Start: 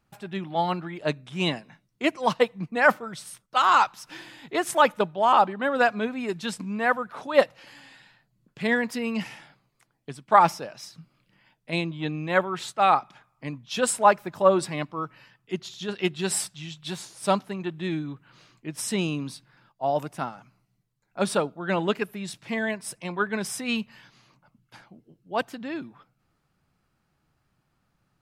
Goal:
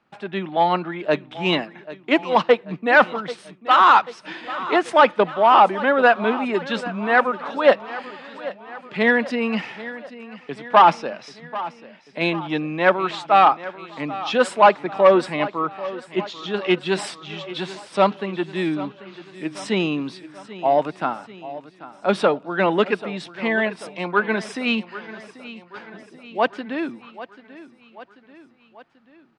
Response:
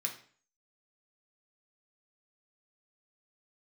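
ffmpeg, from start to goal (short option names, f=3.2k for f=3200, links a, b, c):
-filter_complex "[0:a]aresample=22050,aresample=44100,atempo=0.96,asoftclip=type=tanh:threshold=-13dB,acrossover=split=190 4200:gain=0.0891 1 0.0891[a][b][c];[a][b][c]amix=inputs=3:normalize=0,asplit=2[d][e];[e]aecho=0:1:788|1576|2364|3152|3940:0.158|0.0888|0.0497|0.0278|0.0156[f];[d][f]amix=inputs=2:normalize=0,volume=8dB"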